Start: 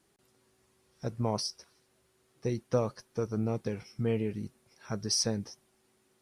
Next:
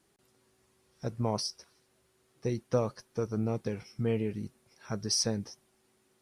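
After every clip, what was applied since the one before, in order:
no processing that can be heard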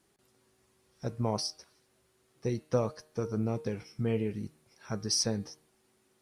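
hum removal 154.1 Hz, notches 30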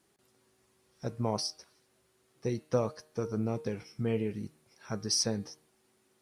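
low-shelf EQ 67 Hz −7 dB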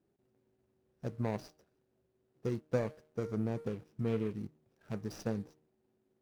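running median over 41 samples
level −2 dB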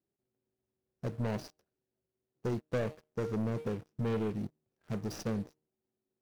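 leveller curve on the samples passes 3
level −6 dB

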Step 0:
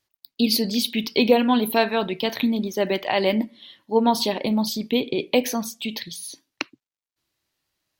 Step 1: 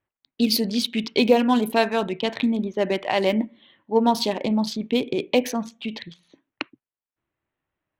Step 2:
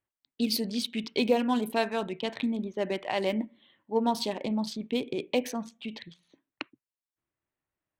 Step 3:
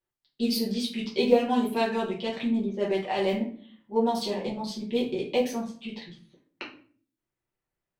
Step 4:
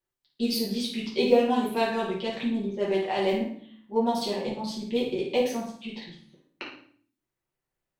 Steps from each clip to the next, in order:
adaptive Wiener filter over 9 samples; low-pass that shuts in the quiet parts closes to 2,500 Hz, open at −16.5 dBFS
parametric band 8,400 Hz +6 dB 0.21 octaves; level −7.5 dB
rectangular room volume 39 cubic metres, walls mixed, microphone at 1.1 metres; level −6 dB
flutter between parallel walls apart 9.4 metres, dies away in 0.45 s

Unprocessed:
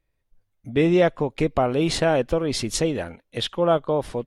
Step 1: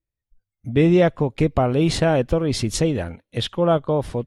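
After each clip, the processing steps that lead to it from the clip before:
noise reduction from a noise print of the clip's start 17 dB
parametric band 90 Hz +9 dB 2.5 octaves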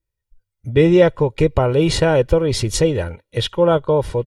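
comb filter 2.1 ms, depth 60%
level +2.5 dB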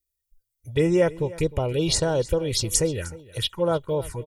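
first-order pre-emphasis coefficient 0.8
phaser swept by the level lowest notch 170 Hz, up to 3,900 Hz, full sweep at −22 dBFS
single-tap delay 307 ms −19 dB
level +6 dB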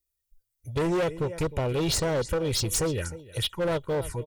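hard clipping −23 dBFS, distortion −8 dB

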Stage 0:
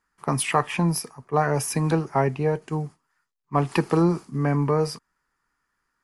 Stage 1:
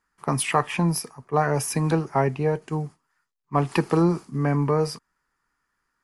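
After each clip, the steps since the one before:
no processing that can be heard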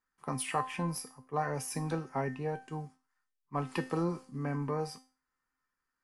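tuned comb filter 260 Hz, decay 0.35 s, harmonics all, mix 80%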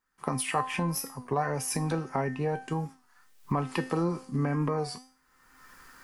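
camcorder AGC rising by 33 dB per second
wow of a warped record 33 1/3 rpm, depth 100 cents
level +3.5 dB

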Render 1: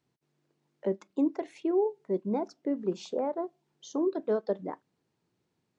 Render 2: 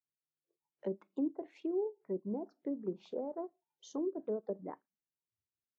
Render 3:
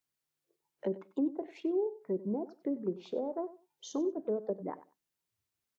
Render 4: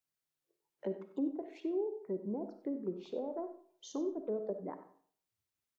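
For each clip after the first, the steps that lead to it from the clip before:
treble cut that deepens with the level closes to 540 Hz, closed at −25.5 dBFS; noise reduction from a noise print of the clip's start 24 dB; level −7 dB
in parallel at +1.5 dB: downward compressor, threshold −45 dBFS, peak gain reduction 14.5 dB; on the sum: repeating echo 95 ms, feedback 17%, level −16 dB; level +1 dB
comb and all-pass reverb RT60 0.53 s, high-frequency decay 0.7×, pre-delay 15 ms, DRR 9 dB; level −4 dB

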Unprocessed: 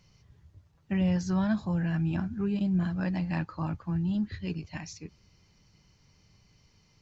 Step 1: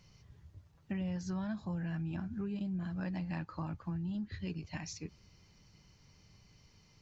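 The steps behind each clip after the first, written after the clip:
downward compressor 4 to 1, threshold −37 dBFS, peak gain reduction 12 dB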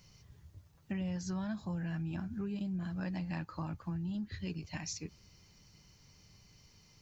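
high-shelf EQ 6,600 Hz +11 dB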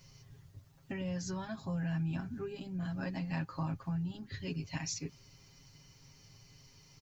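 comb filter 7.4 ms, depth 91%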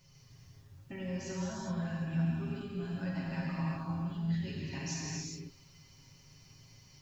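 reverb whose tail is shaped and stops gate 440 ms flat, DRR −5 dB
level −5.5 dB

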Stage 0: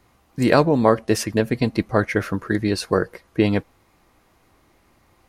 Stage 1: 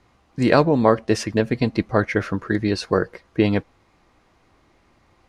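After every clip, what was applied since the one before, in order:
low-pass filter 6,300 Hz 12 dB per octave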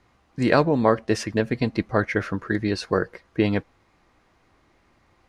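parametric band 1,700 Hz +2.5 dB
level −3 dB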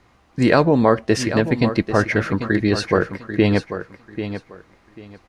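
in parallel at +1.5 dB: brickwall limiter −12 dBFS, peak gain reduction 7.5 dB
on the sum: repeating echo 791 ms, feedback 21%, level −10.5 dB
level −1 dB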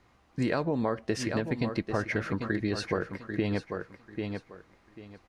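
downward compressor 4 to 1, threshold −18 dBFS, peak gain reduction 8 dB
level −7.5 dB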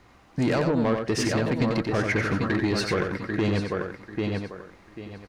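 soft clipping −26.5 dBFS, distortion −11 dB
on a send: single-tap delay 90 ms −5.5 dB
on the sum: level +8 dB

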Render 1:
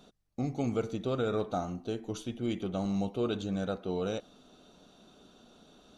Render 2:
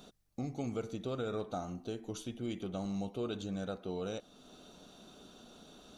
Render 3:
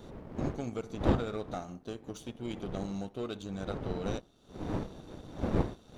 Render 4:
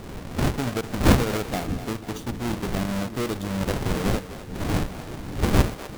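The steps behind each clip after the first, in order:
high-shelf EQ 6,300 Hz +6.5 dB; downward compressor 1.5 to 1, threshold −51 dBFS, peak gain reduction 9 dB; level +2 dB
wind on the microphone 350 Hz −39 dBFS; power curve on the samples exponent 1.4; level +5.5 dB
each half-wave held at its own peak; echo with a time of its own for lows and highs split 360 Hz, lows 616 ms, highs 250 ms, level −12.5 dB; level +5 dB

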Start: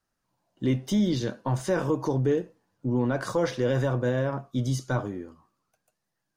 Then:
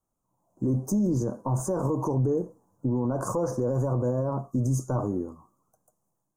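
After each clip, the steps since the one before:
Chebyshev band-stop filter 1,100–6,800 Hz, order 3
brickwall limiter −25.5 dBFS, peak gain reduction 10.5 dB
automatic gain control gain up to 7 dB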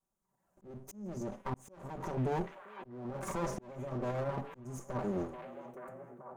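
lower of the sound and its delayed copy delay 5.2 ms
echo through a band-pass that steps 434 ms, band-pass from 2,500 Hz, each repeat −0.7 octaves, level −5 dB
volume swells 661 ms
level −4 dB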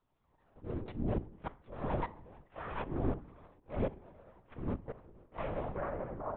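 gate with flip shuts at −33 dBFS, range −32 dB
feedback delay network reverb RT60 0.58 s, low-frequency decay 1.35×, high-frequency decay 0.8×, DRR 12.5 dB
linear-prediction vocoder at 8 kHz whisper
level +10 dB

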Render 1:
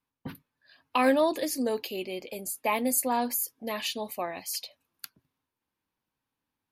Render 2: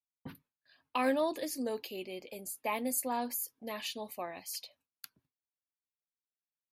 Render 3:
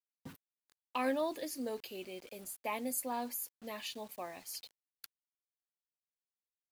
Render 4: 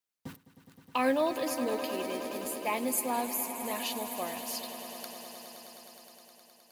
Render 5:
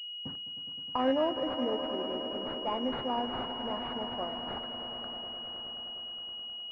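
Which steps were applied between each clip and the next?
noise gate with hold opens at −55 dBFS; level −7 dB
bit reduction 9 bits; level −3.5 dB
echo that builds up and dies away 104 ms, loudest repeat 5, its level −14 dB; level +6 dB
switching amplifier with a slow clock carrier 2,900 Hz

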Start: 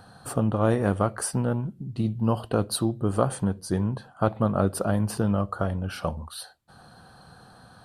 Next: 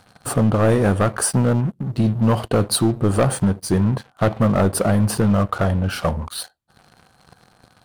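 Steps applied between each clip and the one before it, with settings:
leveller curve on the samples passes 3
level −1.5 dB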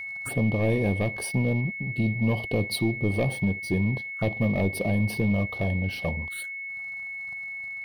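phaser swept by the level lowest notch 360 Hz, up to 1,400 Hz, full sweep at −21.5 dBFS
steady tone 2,200 Hz −26 dBFS
level −7 dB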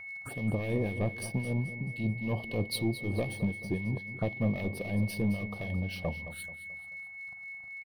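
two-band tremolo in antiphase 3.8 Hz, depth 70%, crossover 1,700 Hz
repeating echo 217 ms, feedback 43%, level −13 dB
level −3.5 dB

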